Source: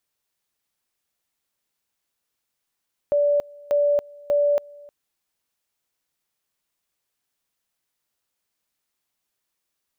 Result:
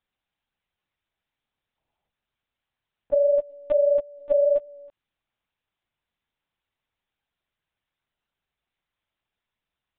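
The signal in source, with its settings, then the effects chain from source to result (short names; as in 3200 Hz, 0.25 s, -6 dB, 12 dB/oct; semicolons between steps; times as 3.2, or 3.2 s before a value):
two-level tone 580 Hz -16 dBFS, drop 25 dB, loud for 0.28 s, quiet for 0.31 s, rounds 3
spectral gain 1.77–2.09, 320–970 Hz +10 dB; LPC vocoder at 8 kHz pitch kept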